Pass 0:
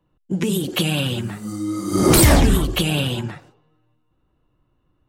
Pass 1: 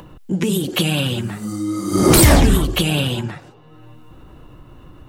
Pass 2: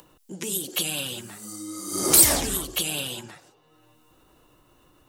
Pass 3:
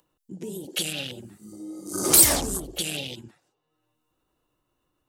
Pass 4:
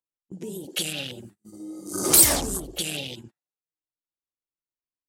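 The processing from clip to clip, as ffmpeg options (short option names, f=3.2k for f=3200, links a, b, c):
-af "acompressor=mode=upward:threshold=-24dB:ratio=2.5,volume=2dB"
-af "bass=f=250:g=-11,treble=f=4k:g=13,volume=-11dB"
-af "afwtdn=0.0224"
-af "agate=range=-32dB:threshold=-43dB:ratio=16:detection=peak"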